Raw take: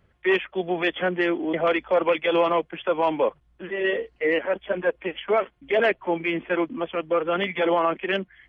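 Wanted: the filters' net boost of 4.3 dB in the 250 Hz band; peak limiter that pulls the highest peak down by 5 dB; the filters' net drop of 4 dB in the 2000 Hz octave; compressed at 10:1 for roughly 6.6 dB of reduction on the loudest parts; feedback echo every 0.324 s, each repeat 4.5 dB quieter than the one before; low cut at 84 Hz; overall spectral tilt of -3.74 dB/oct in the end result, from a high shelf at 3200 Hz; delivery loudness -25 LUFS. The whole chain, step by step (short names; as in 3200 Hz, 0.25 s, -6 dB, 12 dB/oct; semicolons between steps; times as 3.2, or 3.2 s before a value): HPF 84 Hz; bell 250 Hz +7.5 dB; bell 2000 Hz -8 dB; high shelf 3200 Hz +9 dB; compressor 10:1, threshold -22 dBFS; limiter -19.5 dBFS; feedback echo 0.324 s, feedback 60%, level -4.5 dB; gain +2.5 dB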